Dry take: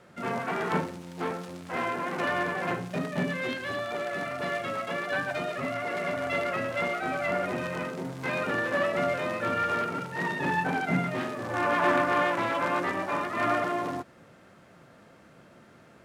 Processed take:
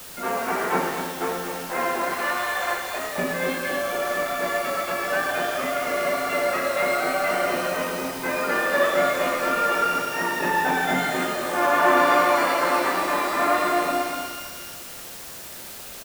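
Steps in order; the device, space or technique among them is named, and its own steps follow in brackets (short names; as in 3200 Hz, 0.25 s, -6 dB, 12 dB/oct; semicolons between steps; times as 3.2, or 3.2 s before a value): 2.13–3.17 HPF 1000 Hz -> 470 Hz 12 dB/oct; wax cylinder (BPF 350–2300 Hz; wow and flutter 18 cents; white noise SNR 14 dB); low shelf 240 Hz +4 dB; echo 0.24 s -7.5 dB; shimmer reverb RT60 1.6 s, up +12 st, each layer -8 dB, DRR 4 dB; gain +4.5 dB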